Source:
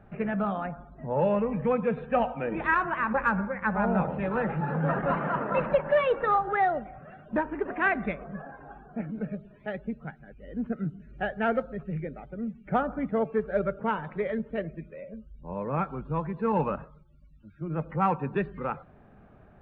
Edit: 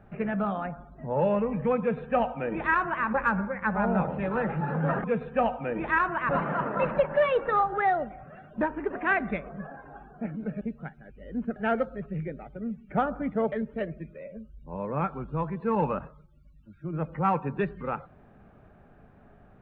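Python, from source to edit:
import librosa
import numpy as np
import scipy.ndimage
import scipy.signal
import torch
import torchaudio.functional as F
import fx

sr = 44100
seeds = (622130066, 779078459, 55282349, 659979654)

y = fx.edit(x, sr, fx.duplicate(start_s=1.8, length_s=1.25, to_s=5.04),
    fx.cut(start_s=9.36, length_s=0.47),
    fx.cut(start_s=10.78, length_s=0.55),
    fx.cut(start_s=13.29, length_s=1.0), tone=tone)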